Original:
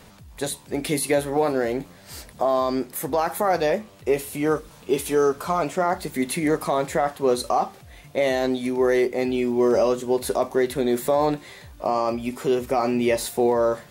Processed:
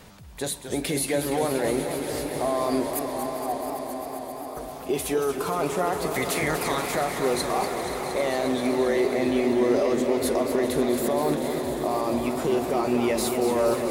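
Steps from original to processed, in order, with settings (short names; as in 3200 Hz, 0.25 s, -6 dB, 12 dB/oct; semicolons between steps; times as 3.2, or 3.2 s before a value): 6.1–6.95 spectral limiter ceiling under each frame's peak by 18 dB; limiter -17 dBFS, peak gain reduction 8.5 dB; 2.99–4.57 vocal tract filter a; swelling echo 0.133 s, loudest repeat 5, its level -15 dB; warbling echo 0.236 s, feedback 79%, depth 174 cents, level -9 dB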